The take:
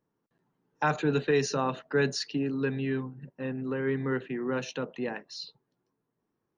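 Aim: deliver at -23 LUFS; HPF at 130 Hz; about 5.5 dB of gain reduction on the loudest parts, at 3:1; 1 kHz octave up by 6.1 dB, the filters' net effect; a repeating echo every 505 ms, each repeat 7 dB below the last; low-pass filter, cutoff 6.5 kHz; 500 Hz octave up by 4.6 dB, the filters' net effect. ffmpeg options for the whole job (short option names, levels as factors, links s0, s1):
-af "highpass=130,lowpass=6500,equalizer=f=500:t=o:g=4.5,equalizer=f=1000:t=o:g=6.5,acompressor=threshold=0.0631:ratio=3,aecho=1:1:505|1010|1515|2020|2525:0.447|0.201|0.0905|0.0407|0.0183,volume=2.11"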